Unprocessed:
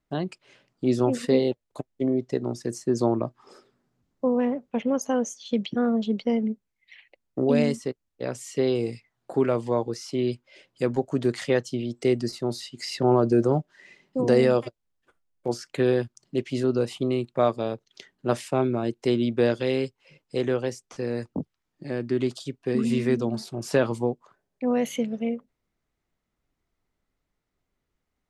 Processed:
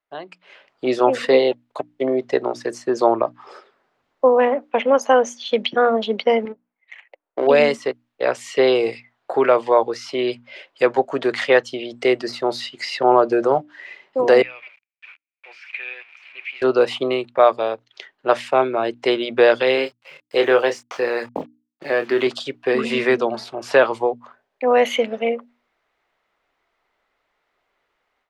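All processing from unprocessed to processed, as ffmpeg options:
-filter_complex "[0:a]asettb=1/sr,asplit=3[s0][s1][s2];[s0]atrim=end=6.454[s3];[s1]atrim=start=6.45:end=7.47,asetpts=PTS-STARTPTS,afade=t=in:d=0.004:c=qsin,afade=t=out:st=1.016:d=0.004:c=qsin,adynamicsmooth=sensitivity=6:basefreq=1100,bass=f=250:g=-12,treble=f=4000:g=7[s4];[s2]atrim=start=7.466[s5];[s3][s4]acrossfade=d=0.004:c1=hsin:c2=qsin[s6];[s6][s5]acrossfade=d=0.004:c1=qsin:c2=hsin,asettb=1/sr,asplit=3[s7][s8][s9];[s7]atrim=end=14.424[s10];[s8]atrim=start=14.42:end=16.62,asetpts=PTS-STARTPTS,afade=t=in:d=0.004:c=qsin,afade=t=out:st=2.196:d=0.004:c=qsin,aeval=exprs='val(0)+0.5*0.02*sgn(val(0))':c=same,bandpass=f=2400:t=q:w=12[s11];[s9]atrim=start=16.616[s12];[s10][s11]acrossfade=d=0.004:c1=hsin:c2=qsin[s13];[s13][s12]acrossfade=d=0.004:c1=qsin:c2=hsin,asettb=1/sr,asplit=3[s14][s15][s16];[s14]atrim=end=19.754[s17];[s15]atrim=start=19.75:end=22.27,asetpts=PTS-STARTPTS,afade=t=in:d=0.004:c=qsin,afade=t=out:st=2.516:d=0.004:c=qsin,lowshelf=f=180:g=-5,acrusher=bits=8:mix=0:aa=0.5,asplit=2[s18][s19];[s19]adelay=26,volume=0.398[s20];[s18][s20]amix=inputs=2:normalize=0,atrim=end_sample=111132[s21];[s16]atrim=start=22.266[s22];[s17][s21]acrossfade=d=0.004:c1=hsin:c2=qsin[s23];[s23][s22]acrossfade=d=0.004:c1=qsin:c2=hsin,acrossover=split=470 3800:gain=0.0708 1 0.126[s24][s25][s26];[s24][s25][s26]amix=inputs=3:normalize=0,bandreject=f=60:t=h:w=6,bandreject=f=120:t=h:w=6,bandreject=f=180:t=h:w=6,bandreject=f=240:t=h:w=6,bandreject=f=300:t=h:w=6,dynaudnorm=f=340:g=3:m=6.68"

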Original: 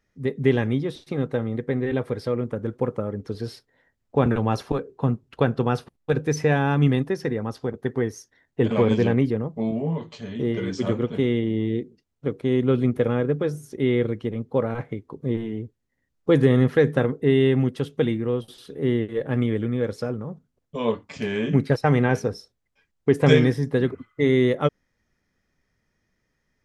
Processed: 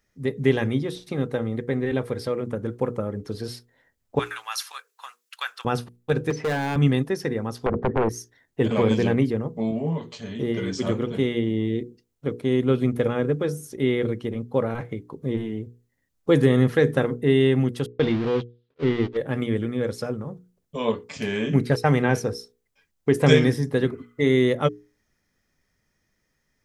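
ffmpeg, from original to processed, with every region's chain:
-filter_complex "[0:a]asettb=1/sr,asplit=3[s0][s1][s2];[s0]atrim=end=4.194[s3];[s1]atrim=start=4.19:end=5.65,asetpts=PTS-STARTPTS,afade=t=in:d=0.004:c=qsin,afade=t=out:st=1.456:d=0.004:c=qsin,highpass=f=1200:w=0.5412,highpass=f=1200:w=1.3066,highshelf=f=3300:g=9[s4];[s2]atrim=start=5.646[s5];[s3][s4]acrossfade=d=0.004:c1=hsin:c2=qsin[s6];[s6][s5]acrossfade=d=0.004:c1=qsin:c2=hsin,asettb=1/sr,asplit=3[s7][s8][s9];[s7]atrim=end=6.304[s10];[s8]atrim=start=6.3:end=6.76,asetpts=PTS-STARTPTS,afade=t=in:d=0.004:c=qsin,afade=t=out:st=0.456:d=0.004:c=qsin,highpass=180,lowpass=2900,volume=10,asoftclip=hard,volume=0.1[s11];[s9]atrim=start=6.756[s12];[s10][s11]acrossfade=d=0.004:c1=hsin:c2=qsin[s13];[s13][s12]acrossfade=d=0.004:c1=qsin:c2=hsin,asettb=1/sr,asplit=3[s14][s15][s16];[s14]atrim=end=7.664[s17];[s15]atrim=start=7.66:end=8.09,asetpts=PTS-STARTPTS,afade=t=in:d=0.004:c=qsin,afade=t=out:st=0.426:d=0.004:c=qsin,lowpass=1000,acompressor=threshold=0.0282:ratio=3:attack=3.2:release=140:knee=1:detection=peak,aeval=exprs='0.15*sin(PI/2*5.01*val(0)/0.15)':c=same[s18];[s16]atrim=start=8.086[s19];[s17][s18]acrossfade=d=0.004:c1=hsin:c2=qsin[s20];[s20][s19]acrossfade=d=0.004:c1=qsin:c2=hsin,asettb=1/sr,asplit=3[s21][s22][s23];[s21]atrim=end=17.864[s24];[s22]atrim=start=17.86:end=19.17,asetpts=PTS-STARTPTS,afade=t=in:d=0.004:c=qsin,afade=t=out:st=1.306:d=0.004:c=qsin,aeval=exprs='val(0)+0.5*0.0447*sgn(val(0))':c=same,lowpass=f=3900:w=0.5412,lowpass=f=3900:w=1.3066,agate=range=0.00224:threshold=0.0501:ratio=16:release=100:detection=peak[s25];[s23]atrim=start=19.166[s26];[s24][s25]acrossfade=d=0.004:c1=hsin:c2=qsin[s27];[s27][s26]acrossfade=d=0.004:c1=qsin:c2=hsin,highshelf=f=5800:g=9.5,bandreject=f=60:t=h:w=6,bandreject=f=120:t=h:w=6,bandreject=f=180:t=h:w=6,bandreject=f=240:t=h:w=6,bandreject=f=300:t=h:w=6,bandreject=f=360:t=h:w=6,bandreject=f=420:t=h:w=6,bandreject=f=480:t=h:w=6"

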